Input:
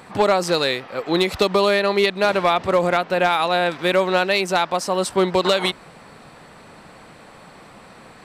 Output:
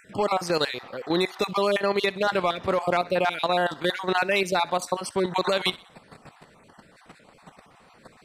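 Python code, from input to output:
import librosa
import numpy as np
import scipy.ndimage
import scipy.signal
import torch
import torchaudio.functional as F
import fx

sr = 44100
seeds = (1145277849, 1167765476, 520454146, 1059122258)

y = fx.spec_dropout(x, sr, seeds[0], share_pct=28)
y = fx.level_steps(y, sr, step_db=11)
y = fx.echo_thinned(y, sr, ms=63, feedback_pct=45, hz=620.0, wet_db=-20)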